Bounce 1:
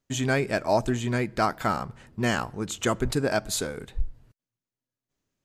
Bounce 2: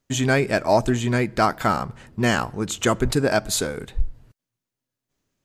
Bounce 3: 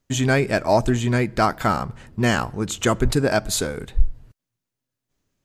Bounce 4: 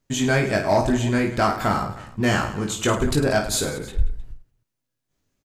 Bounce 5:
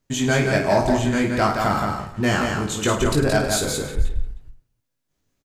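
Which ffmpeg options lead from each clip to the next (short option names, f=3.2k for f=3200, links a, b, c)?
-af "acontrast=30"
-af "lowshelf=f=96:g=6"
-af "aecho=1:1:20|52|103.2|185.1|316.2:0.631|0.398|0.251|0.158|0.1,acontrast=47,volume=-7.5dB"
-af "aecho=1:1:172:0.596"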